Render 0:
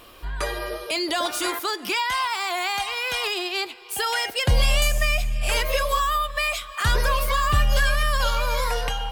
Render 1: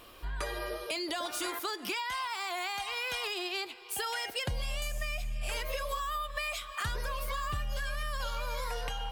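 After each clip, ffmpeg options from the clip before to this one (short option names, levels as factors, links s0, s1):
-af "acompressor=threshold=0.0501:ratio=6,volume=0.531"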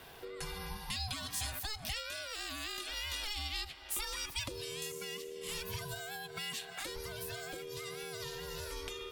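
-filter_complex "[0:a]aeval=exprs='val(0)*sin(2*PI*430*n/s)':c=same,acrossover=split=140|3000[s0][s1][s2];[s1]acompressor=threshold=0.00282:ratio=3[s3];[s0][s3][s2]amix=inputs=3:normalize=0,volume=1.41"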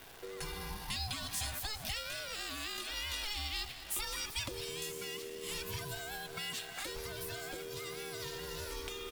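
-filter_complex "[0:a]acrusher=bits=9:dc=4:mix=0:aa=0.000001,asplit=7[s0][s1][s2][s3][s4][s5][s6];[s1]adelay=206,afreqshift=-67,volume=0.211[s7];[s2]adelay=412,afreqshift=-134,volume=0.12[s8];[s3]adelay=618,afreqshift=-201,volume=0.0684[s9];[s4]adelay=824,afreqshift=-268,volume=0.0394[s10];[s5]adelay=1030,afreqshift=-335,volume=0.0224[s11];[s6]adelay=1236,afreqshift=-402,volume=0.0127[s12];[s0][s7][s8][s9][s10][s11][s12]amix=inputs=7:normalize=0"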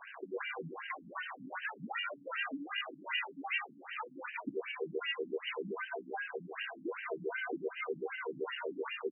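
-filter_complex "[0:a]asplit=2[s0][s1];[s1]adelay=15,volume=0.266[s2];[s0][s2]amix=inputs=2:normalize=0,afftfilt=real='re*between(b*sr/1024,210*pow(2200/210,0.5+0.5*sin(2*PI*2.6*pts/sr))/1.41,210*pow(2200/210,0.5+0.5*sin(2*PI*2.6*pts/sr))*1.41)':imag='im*between(b*sr/1024,210*pow(2200/210,0.5+0.5*sin(2*PI*2.6*pts/sr))/1.41,210*pow(2200/210,0.5+0.5*sin(2*PI*2.6*pts/sr))*1.41)':win_size=1024:overlap=0.75,volume=3.55"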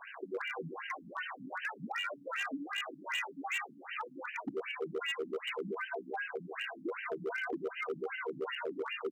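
-af "volume=39.8,asoftclip=hard,volume=0.0251,volume=1.19"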